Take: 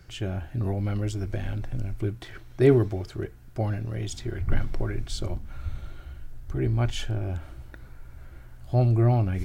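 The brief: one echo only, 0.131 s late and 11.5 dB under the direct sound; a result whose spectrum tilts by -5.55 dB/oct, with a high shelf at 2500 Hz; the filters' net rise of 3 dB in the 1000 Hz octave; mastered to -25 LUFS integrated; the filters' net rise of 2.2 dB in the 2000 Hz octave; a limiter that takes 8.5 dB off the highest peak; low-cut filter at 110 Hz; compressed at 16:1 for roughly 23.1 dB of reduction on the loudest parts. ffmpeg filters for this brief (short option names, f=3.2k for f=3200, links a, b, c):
-af "highpass=110,equalizer=f=1k:t=o:g=5,equalizer=f=2k:t=o:g=4.5,highshelf=f=2.5k:g=-8,acompressor=threshold=-36dB:ratio=16,alimiter=level_in=8.5dB:limit=-24dB:level=0:latency=1,volume=-8.5dB,aecho=1:1:131:0.266,volume=19dB"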